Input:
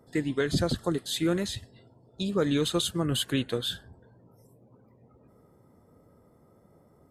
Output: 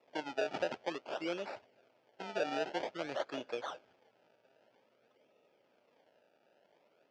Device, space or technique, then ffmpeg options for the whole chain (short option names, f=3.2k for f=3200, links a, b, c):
circuit-bent sampling toy: -af "acrusher=samples=28:mix=1:aa=0.000001:lfo=1:lforange=28:lforate=0.51,highpass=550,equalizer=f=600:t=q:w=4:g=5,equalizer=f=1.1k:t=q:w=4:g=-9,equalizer=f=1.9k:t=q:w=4:g=-6,equalizer=f=3.9k:t=q:w=4:g=-8,lowpass=f=4.6k:w=0.5412,lowpass=f=4.6k:w=1.3066,volume=-4.5dB"